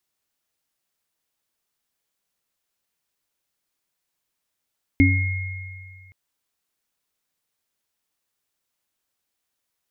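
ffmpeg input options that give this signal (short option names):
-f lavfi -i "aevalsrc='0.188*pow(10,-3*t/1.97)*sin(2*PI*93.2*t)+0.299*pow(10,-3*t/0.39)*sin(2*PI*275*t)+0.112*pow(10,-3*t/2.09)*sin(2*PI*2150*t)':d=1.12:s=44100"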